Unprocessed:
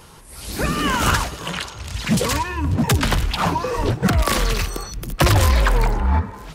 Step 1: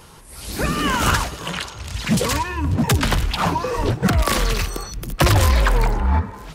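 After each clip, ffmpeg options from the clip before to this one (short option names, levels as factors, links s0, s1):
-af anull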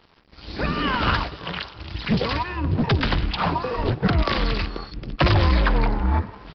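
-af "tremolo=f=250:d=0.519,aresample=11025,aeval=exprs='sgn(val(0))*max(abs(val(0))-0.00501,0)':c=same,aresample=44100"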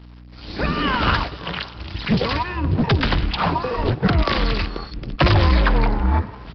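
-af "aeval=exprs='val(0)+0.00708*(sin(2*PI*60*n/s)+sin(2*PI*2*60*n/s)/2+sin(2*PI*3*60*n/s)/3+sin(2*PI*4*60*n/s)/4+sin(2*PI*5*60*n/s)/5)':c=same,volume=1.33"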